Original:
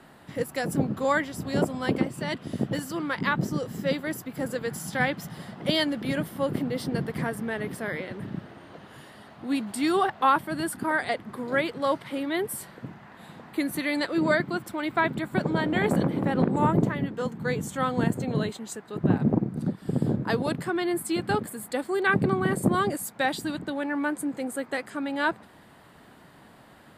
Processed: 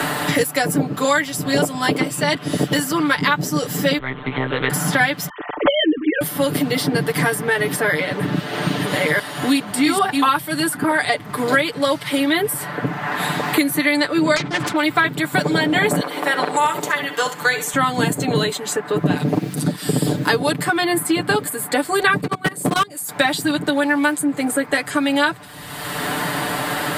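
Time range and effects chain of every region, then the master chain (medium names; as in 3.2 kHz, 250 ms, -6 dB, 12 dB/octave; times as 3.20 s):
3.98–4.70 s: compression 2:1, threshold -35 dBFS + monotone LPC vocoder at 8 kHz 130 Hz
5.29–6.21 s: formants replaced by sine waves + tilt EQ -3.5 dB/octave
7.86–10.37 s: chunks repeated in reverse 667 ms, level -1.5 dB + tape noise reduction on one side only decoder only
14.36–14.76 s: self-modulated delay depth 0.53 ms + distance through air 81 m + decay stretcher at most 66 dB/s
16.00–17.74 s: high-pass 660 Hz + flutter echo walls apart 11.4 m, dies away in 0.32 s
22.21–23.09 s: high-pass 57 Hz + level held to a coarse grid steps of 24 dB + hard clipper -20.5 dBFS
whole clip: tilt EQ +2 dB/octave; comb 6.8 ms, depth 92%; three bands compressed up and down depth 100%; trim +6.5 dB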